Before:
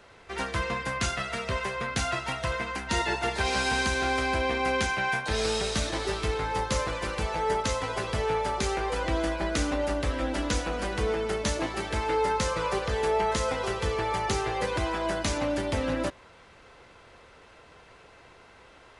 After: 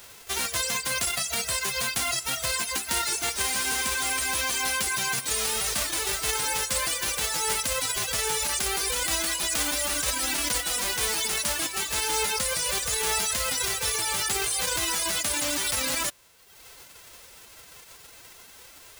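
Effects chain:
spectral envelope flattened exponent 0.1
reverb reduction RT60 0.95 s
in parallel at −2 dB: compressor whose output falls as the input rises −34 dBFS, ratio −0.5

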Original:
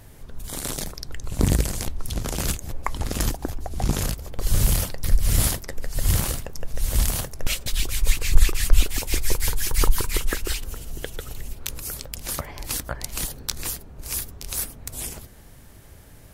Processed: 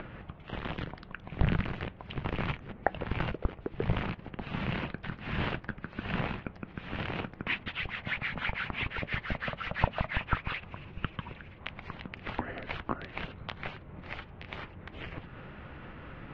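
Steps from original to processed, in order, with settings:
upward compression, threshold −26 dBFS
single-sideband voice off tune −330 Hz 180–3,100 Hz

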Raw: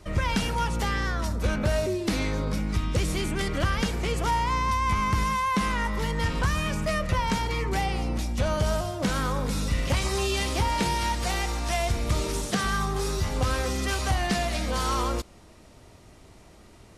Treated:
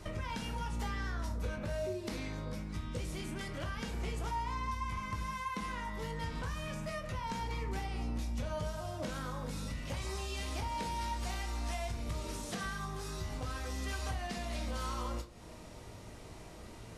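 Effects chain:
downward compressor 6 to 1, threshold −39 dBFS, peak gain reduction 17.5 dB
on a send: convolution reverb RT60 0.30 s, pre-delay 14 ms, DRR 3 dB

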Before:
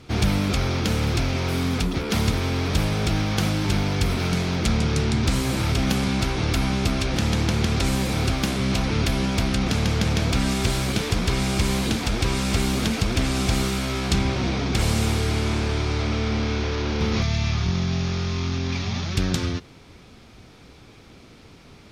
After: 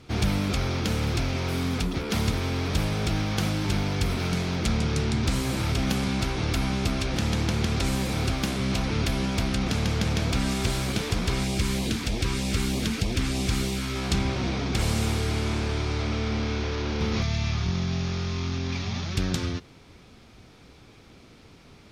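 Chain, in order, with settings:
0:11.44–0:13.96: auto-filter notch sine 3.2 Hz 560–1,500 Hz
level −3.5 dB

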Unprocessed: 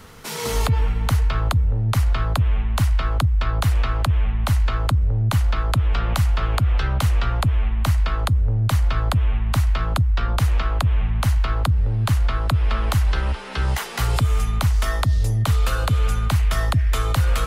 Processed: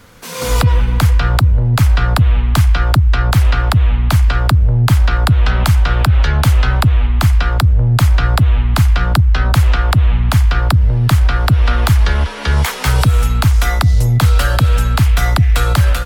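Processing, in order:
automatic gain control gain up to 11.5 dB
wrong playback speed 44.1 kHz file played as 48 kHz

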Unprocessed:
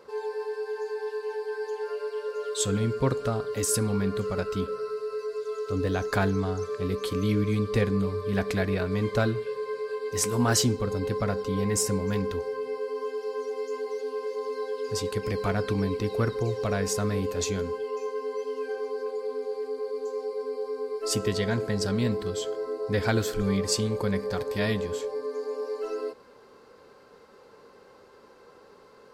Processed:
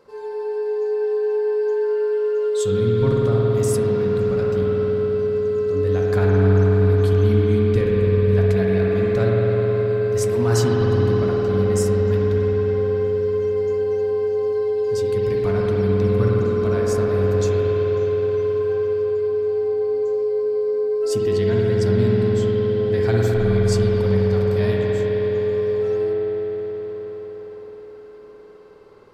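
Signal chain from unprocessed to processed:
low-shelf EQ 230 Hz +8.5 dB
convolution reverb RT60 5.6 s, pre-delay 52 ms, DRR −4.5 dB
level −4 dB

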